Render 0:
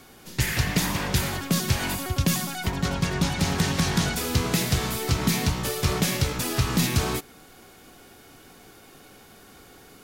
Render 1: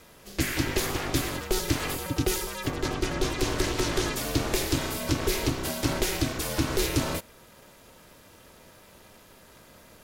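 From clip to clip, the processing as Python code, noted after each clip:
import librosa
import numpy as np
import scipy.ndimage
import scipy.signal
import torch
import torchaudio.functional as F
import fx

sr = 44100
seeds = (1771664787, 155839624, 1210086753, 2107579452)

y = x * np.sin(2.0 * np.pi * 200.0 * np.arange(len(x)) / sr)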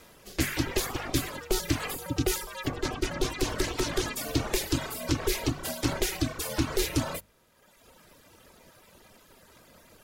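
y = fx.dereverb_blind(x, sr, rt60_s=1.3)
y = fx.hum_notches(y, sr, base_hz=50, count=4)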